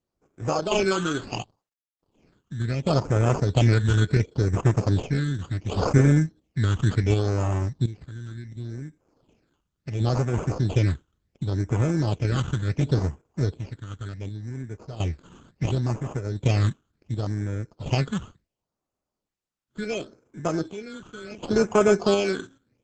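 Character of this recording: aliases and images of a low sample rate 1.9 kHz, jitter 0%; phasing stages 8, 0.7 Hz, lowest notch 650–4200 Hz; random-step tremolo 1.4 Hz, depth 90%; Opus

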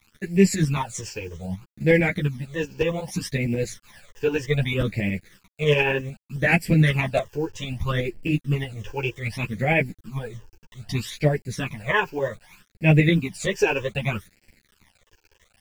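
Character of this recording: a quantiser's noise floor 8-bit, dither none; phasing stages 12, 0.64 Hz, lowest notch 200–1200 Hz; tremolo saw up 11 Hz, depth 50%; a shimmering, thickened sound

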